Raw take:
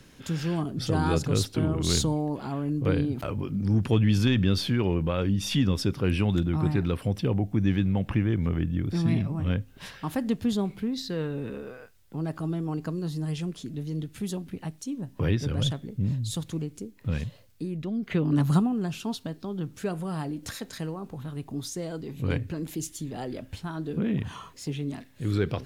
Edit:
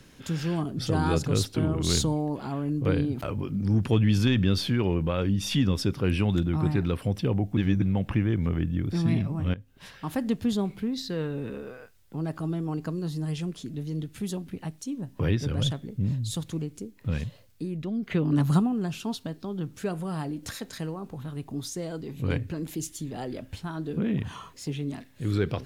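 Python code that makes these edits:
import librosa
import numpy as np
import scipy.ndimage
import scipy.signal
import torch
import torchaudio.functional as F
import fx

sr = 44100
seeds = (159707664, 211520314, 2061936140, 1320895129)

y = fx.edit(x, sr, fx.reverse_span(start_s=7.57, length_s=0.25),
    fx.fade_in_from(start_s=9.54, length_s=0.63, floor_db=-16.5), tone=tone)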